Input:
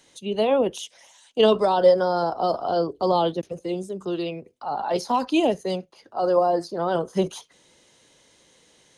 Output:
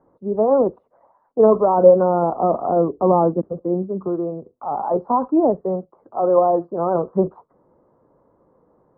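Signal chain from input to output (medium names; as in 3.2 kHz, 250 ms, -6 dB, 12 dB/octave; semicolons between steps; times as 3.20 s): elliptic low-pass 1.2 kHz, stop band 60 dB; 1.74–4.08 s: dynamic bell 220 Hz, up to +7 dB, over -39 dBFS, Q 1.4; trim +4.5 dB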